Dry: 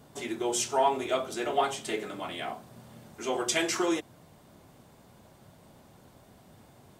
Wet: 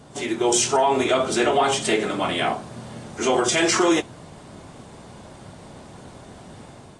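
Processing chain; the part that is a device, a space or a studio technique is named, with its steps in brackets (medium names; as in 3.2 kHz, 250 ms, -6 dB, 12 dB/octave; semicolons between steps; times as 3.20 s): low-bitrate web radio (level rider gain up to 4.5 dB; peak limiter -18.5 dBFS, peak gain reduction 9.5 dB; trim +8 dB; AAC 32 kbps 22.05 kHz)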